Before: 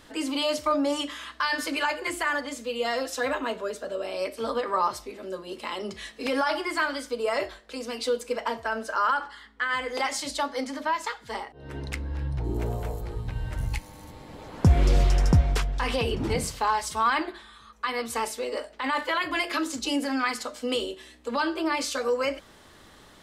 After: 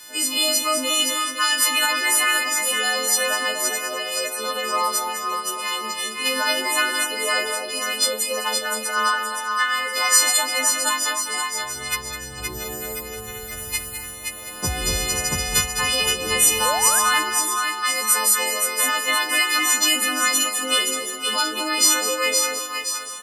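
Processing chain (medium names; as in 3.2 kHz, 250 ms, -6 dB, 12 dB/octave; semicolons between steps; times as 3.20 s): partials quantised in pitch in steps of 3 st; tilt EQ +2.5 dB/octave; two-band feedback delay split 970 Hz, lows 250 ms, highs 520 ms, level -4 dB; painted sound rise, 16.65–17.00 s, 460–1800 Hz -26 dBFS; delay 205 ms -10 dB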